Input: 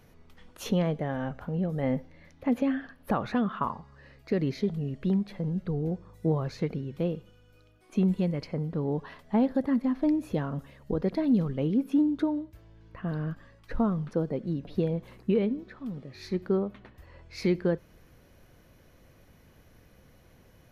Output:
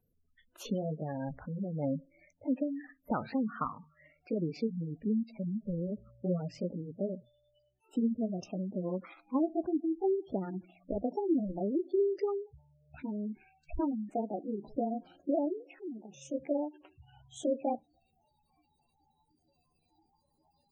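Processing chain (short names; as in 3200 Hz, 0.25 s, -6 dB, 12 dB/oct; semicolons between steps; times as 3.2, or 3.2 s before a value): gliding pitch shift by +8.5 st starting unshifted; spectral noise reduction 15 dB; spectral gate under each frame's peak -15 dB strong; gain -4 dB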